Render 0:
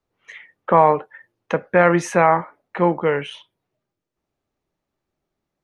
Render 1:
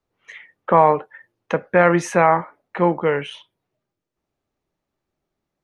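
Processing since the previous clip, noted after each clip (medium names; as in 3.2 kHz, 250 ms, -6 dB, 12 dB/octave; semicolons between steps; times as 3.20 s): no audible change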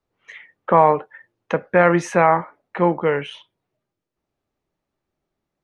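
treble shelf 9.1 kHz -9 dB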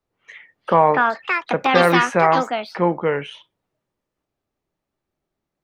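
ever faster or slower copies 486 ms, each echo +7 st, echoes 2; trim -1 dB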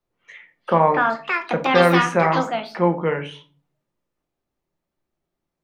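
simulated room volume 230 m³, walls furnished, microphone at 0.87 m; trim -2.5 dB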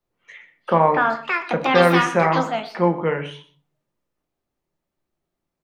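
delay 124 ms -16.5 dB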